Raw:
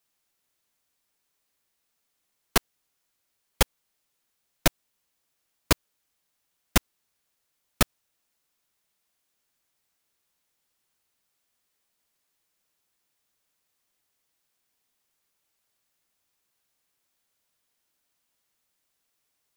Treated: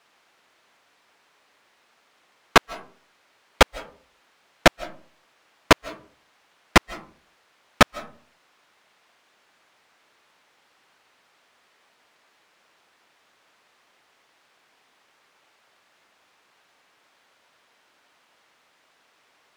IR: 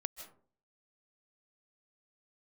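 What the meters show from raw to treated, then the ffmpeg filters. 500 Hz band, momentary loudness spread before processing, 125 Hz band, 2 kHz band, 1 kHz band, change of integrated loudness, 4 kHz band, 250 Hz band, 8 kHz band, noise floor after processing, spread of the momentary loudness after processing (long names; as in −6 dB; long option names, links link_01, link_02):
+10.0 dB, 0 LU, +2.5 dB, +10.5 dB, +11.5 dB, +7.0 dB, +6.0 dB, +6.0 dB, −1.0 dB, −64 dBFS, 8 LU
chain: -filter_complex "[0:a]aemphasis=mode=reproduction:type=75kf,asplit=2[link_01][link_02];[link_02]highpass=frequency=720:poles=1,volume=29dB,asoftclip=type=tanh:threshold=-4.5dB[link_03];[link_01][link_03]amix=inputs=2:normalize=0,lowpass=frequency=3000:poles=1,volume=-6dB,asplit=2[link_04][link_05];[1:a]atrim=start_sample=2205[link_06];[link_05][link_06]afir=irnorm=-1:irlink=0,volume=-8dB[link_07];[link_04][link_07]amix=inputs=2:normalize=0,volume=1dB"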